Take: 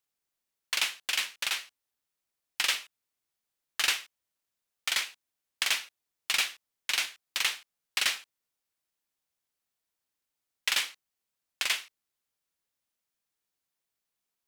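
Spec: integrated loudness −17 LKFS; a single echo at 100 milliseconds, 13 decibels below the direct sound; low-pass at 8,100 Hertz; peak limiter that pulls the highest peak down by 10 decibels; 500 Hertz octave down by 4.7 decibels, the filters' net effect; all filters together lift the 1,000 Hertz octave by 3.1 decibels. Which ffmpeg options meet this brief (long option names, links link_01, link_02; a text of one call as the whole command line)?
ffmpeg -i in.wav -af "lowpass=8100,equalizer=frequency=500:width_type=o:gain=-9,equalizer=frequency=1000:width_type=o:gain=6,alimiter=limit=-21.5dB:level=0:latency=1,aecho=1:1:100:0.224,volume=18.5dB" out.wav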